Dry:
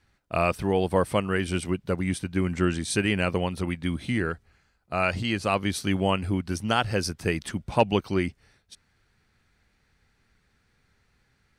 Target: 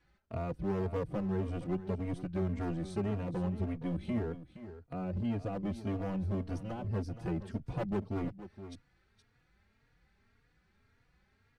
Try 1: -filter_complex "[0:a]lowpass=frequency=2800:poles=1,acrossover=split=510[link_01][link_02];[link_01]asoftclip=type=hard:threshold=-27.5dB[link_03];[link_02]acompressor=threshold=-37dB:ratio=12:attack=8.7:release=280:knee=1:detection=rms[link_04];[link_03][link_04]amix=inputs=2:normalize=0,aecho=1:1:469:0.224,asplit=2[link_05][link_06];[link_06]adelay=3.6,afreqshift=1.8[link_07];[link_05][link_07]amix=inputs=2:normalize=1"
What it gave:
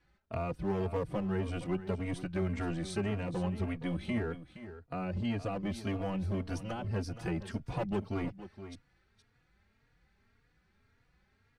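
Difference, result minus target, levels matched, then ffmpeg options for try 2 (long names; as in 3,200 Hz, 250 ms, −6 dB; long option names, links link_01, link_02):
downward compressor: peak gain reduction −9.5 dB
-filter_complex "[0:a]lowpass=frequency=2800:poles=1,acrossover=split=510[link_01][link_02];[link_01]asoftclip=type=hard:threshold=-27.5dB[link_03];[link_02]acompressor=threshold=-47.5dB:ratio=12:attack=8.7:release=280:knee=1:detection=rms[link_04];[link_03][link_04]amix=inputs=2:normalize=0,aecho=1:1:469:0.224,asplit=2[link_05][link_06];[link_06]adelay=3.6,afreqshift=1.8[link_07];[link_05][link_07]amix=inputs=2:normalize=1"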